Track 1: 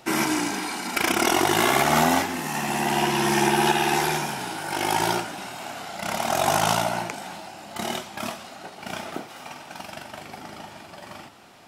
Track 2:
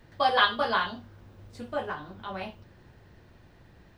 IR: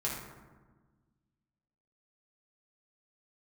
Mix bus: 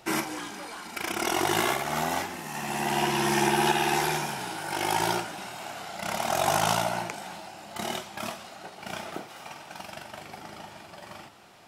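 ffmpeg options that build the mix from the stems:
-filter_complex "[0:a]equalizer=f=260:w=6.9:g=-7.5,volume=0.708[s0];[1:a]asoftclip=type=tanh:threshold=0.0841,volume=0.178,asplit=2[s1][s2];[s2]apad=whole_len=514682[s3];[s0][s3]sidechaincompress=threshold=0.00282:ratio=3:attack=6.5:release=948[s4];[s4][s1]amix=inputs=2:normalize=0"

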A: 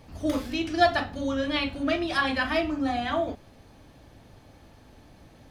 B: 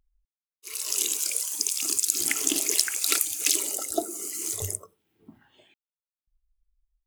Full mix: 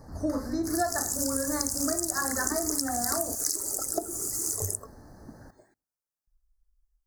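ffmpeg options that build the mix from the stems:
-filter_complex "[0:a]volume=1.33,asplit=2[s0][s1];[s1]volume=0.106[s2];[1:a]volume=1.33[s3];[s2]aecho=0:1:113|226|339|452:1|0.23|0.0529|0.0122[s4];[s0][s3][s4]amix=inputs=3:normalize=0,asuperstop=centerf=2900:order=8:qfactor=1,acompressor=threshold=0.0562:ratio=6"

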